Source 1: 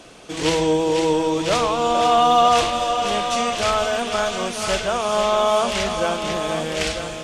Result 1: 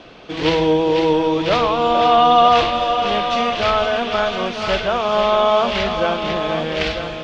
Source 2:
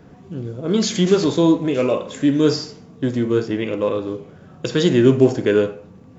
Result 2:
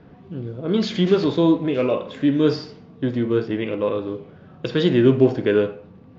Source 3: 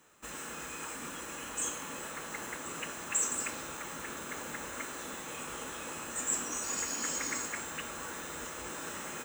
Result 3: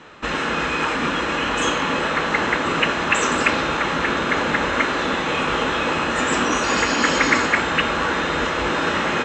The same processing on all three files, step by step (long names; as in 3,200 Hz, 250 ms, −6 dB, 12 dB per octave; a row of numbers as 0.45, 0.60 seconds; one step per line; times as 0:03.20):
low-pass filter 4,300 Hz 24 dB per octave
normalise the peak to −3 dBFS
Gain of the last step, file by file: +3.0, −2.0, +21.5 decibels